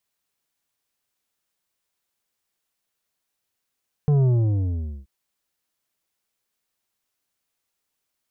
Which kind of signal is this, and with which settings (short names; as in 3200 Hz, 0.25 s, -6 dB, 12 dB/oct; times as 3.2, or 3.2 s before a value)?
sub drop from 150 Hz, over 0.98 s, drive 8.5 dB, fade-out 0.82 s, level -16 dB